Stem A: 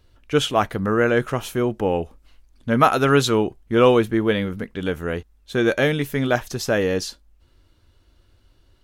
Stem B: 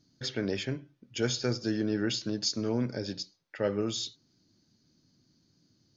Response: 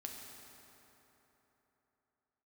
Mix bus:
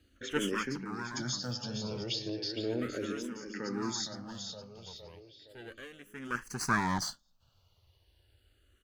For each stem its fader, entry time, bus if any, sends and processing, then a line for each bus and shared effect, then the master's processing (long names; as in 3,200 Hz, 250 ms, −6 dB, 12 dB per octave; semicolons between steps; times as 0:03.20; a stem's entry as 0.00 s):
−2.5 dB, 0.00 s, no send, no echo send, lower of the sound and its delayed copy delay 0.65 ms; parametric band 300 Hz −6 dB 0.82 octaves; automatic ducking −20 dB, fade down 1.45 s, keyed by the second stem
+1.0 dB, 0.00 s, no send, echo send −7.5 dB, brickwall limiter −23.5 dBFS, peak gain reduction 8 dB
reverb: not used
echo: repeating echo 464 ms, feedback 50%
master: low-shelf EQ 67 Hz −10 dB; frequency shifter mixed with the dry sound −0.35 Hz